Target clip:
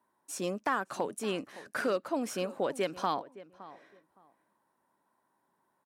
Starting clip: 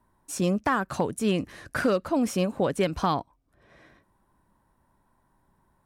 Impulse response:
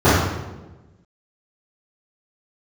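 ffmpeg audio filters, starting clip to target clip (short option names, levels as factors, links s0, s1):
-filter_complex "[0:a]highpass=310,asplit=2[s0][s1];[s1]adelay=565,lowpass=f=1500:p=1,volume=0.15,asplit=2[s2][s3];[s3]adelay=565,lowpass=f=1500:p=1,volume=0.22[s4];[s0][s2][s4]amix=inputs=3:normalize=0,volume=0.562"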